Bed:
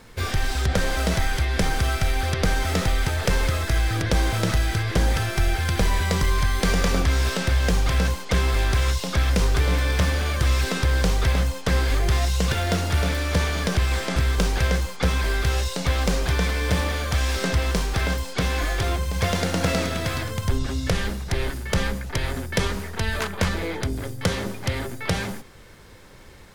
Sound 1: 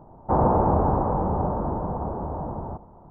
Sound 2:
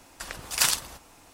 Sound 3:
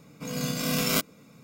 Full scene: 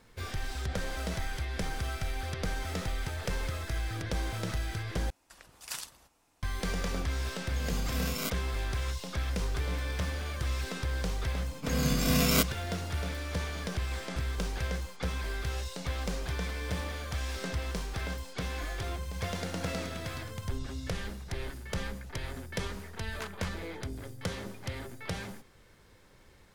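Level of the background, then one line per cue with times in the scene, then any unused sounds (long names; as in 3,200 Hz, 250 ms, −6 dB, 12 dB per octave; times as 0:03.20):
bed −12 dB
0:05.10: overwrite with 2 −16.5 dB
0:07.29: mix in 3 −9.5 dB
0:11.42: mix in 3 −1 dB + low-shelf EQ 170 Hz +6 dB
not used: 1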